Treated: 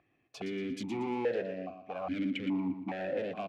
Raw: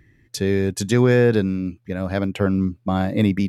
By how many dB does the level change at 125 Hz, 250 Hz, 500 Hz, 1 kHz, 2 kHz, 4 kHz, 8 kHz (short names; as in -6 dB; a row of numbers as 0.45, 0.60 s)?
-24.5 dB, -14.5 dB, -14.0 dB, -9.5 dB, -14.5 dB, -13.0 dB, under -20 dB